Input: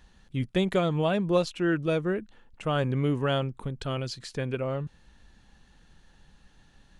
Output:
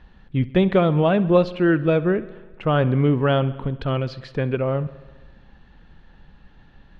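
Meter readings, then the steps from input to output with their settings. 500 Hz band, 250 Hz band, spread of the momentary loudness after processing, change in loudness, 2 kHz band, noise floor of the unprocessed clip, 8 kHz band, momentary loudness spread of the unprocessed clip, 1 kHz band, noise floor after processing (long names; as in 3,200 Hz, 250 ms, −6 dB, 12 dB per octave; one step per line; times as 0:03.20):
+8.0 dB, +8.0 dB, 10 LU, +7.5 dB, +6.0 dB, −60 dBFS, below −10 dB, 10 LU, +7.0 dB, −51 dBFS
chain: high-frequency loss of the air 320 metres
bucket-brigade delay 67 ms, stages 2,048, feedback 70%, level −19 dB
level +8.5 dB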